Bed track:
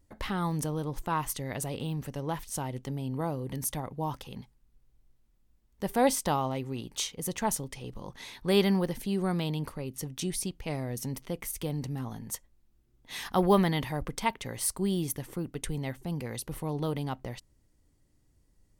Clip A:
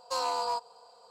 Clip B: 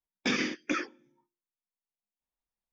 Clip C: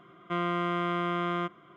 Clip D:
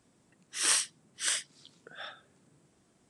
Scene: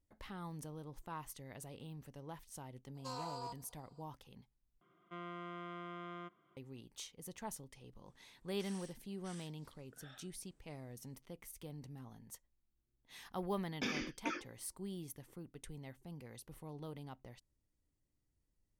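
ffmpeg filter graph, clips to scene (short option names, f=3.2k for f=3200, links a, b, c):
-filter_complex "[0:a]volume=-16dB[a];[4:a]acompressor=threshold=-41dB:ratio=6:attack=3.2:release=140:knee=1:detection=peak[b];[2:a]bandreject=f=1.9k:w=13[c];[a]asplit=2[d][e];[d]atrim=end=4.814[f];[3:a]atrim=end=1.76,asetpts=PTS-STARTPTS,volume=-17.5dB[g];[e]atrim=start=6.566[h];[1:a]atrim=end=1.1,asetpts=PTS-STARTPTS,volume=-14.5dB,afade=t=in:d=0.02,afade=t=out:st=1.08:d=0.02,adelay=2940[i];[b]atrim=end=3.09,asetpts=PTS-STARTPTS,volume=-13dB,afade=t=in:d=0.004:c=hsin,afade=t=out:st=3.086:d=0.004:c=hsin,adelay=8060[j];[c]atrim=end=2.72,asetpts=PTS-STARTPTS,volume=-10dB,afade=t=in:d=0.004:c=hsin,afade=t=out:st=2.716:d=0.004:c=hsin,adelay=13560[k];[f][g]acrossfade=d=0.004:c1=hsin:c2=hsin[l];[l][h]acrossfade=d=0.004:c1=hsin:c2=hsin[m];[m][i][j][k]amix=inputs=4:normalize=0"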